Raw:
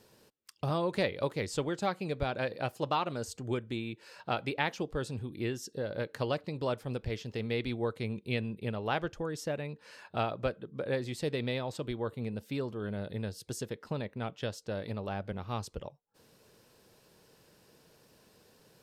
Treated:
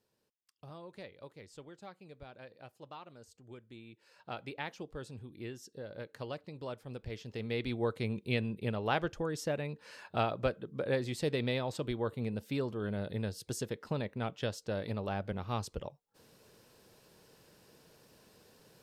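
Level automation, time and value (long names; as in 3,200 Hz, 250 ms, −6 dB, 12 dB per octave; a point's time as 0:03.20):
0:03.49 −18 dB
0:04.38 −9 dB
0:06.81 −9 dB
0:07.89 +0.5 dB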